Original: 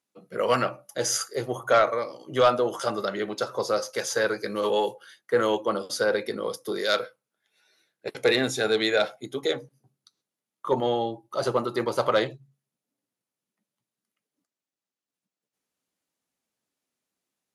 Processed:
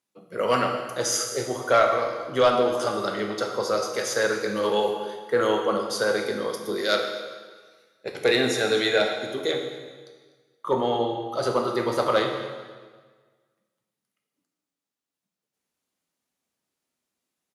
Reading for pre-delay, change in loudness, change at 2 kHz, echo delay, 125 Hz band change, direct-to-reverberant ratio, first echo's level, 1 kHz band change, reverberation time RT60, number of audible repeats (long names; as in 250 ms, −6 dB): 8 ms, +1.5 dB, +1.5 dB, 247 ms, +0.5 dB, 3.0 dB, −18.5 dB, +2.0 dB, 1.4 s, 1